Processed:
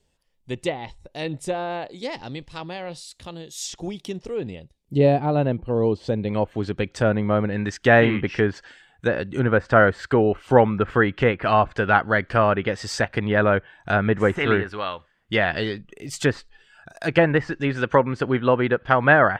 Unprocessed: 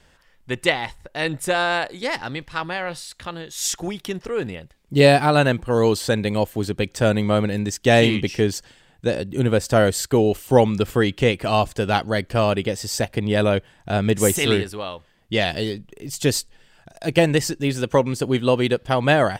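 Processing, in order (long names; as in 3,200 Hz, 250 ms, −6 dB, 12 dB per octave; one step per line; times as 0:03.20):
treble cut that deepens with the level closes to 1,700 Hz, closed at −16 dBFS
noise reduction from a noise print of the clip's start 10 dB
parametric band 1,500 Hz −12.5 dB 1.2 octaves, from 0:06.29 +3.5 dB, from 0:07.56 +12 dB
level −2 dB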